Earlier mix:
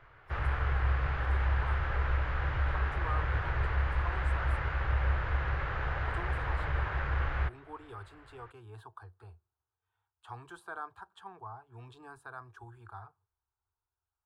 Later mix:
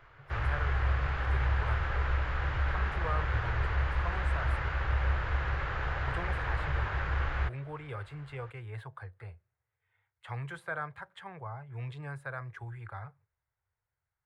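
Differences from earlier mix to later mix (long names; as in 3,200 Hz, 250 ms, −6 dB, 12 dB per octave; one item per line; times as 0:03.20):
speech: remove phaser with its sweep stopped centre 550 Hz, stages 6
first sound: add high-shelf EQ 5,400 Hz +10.5 dB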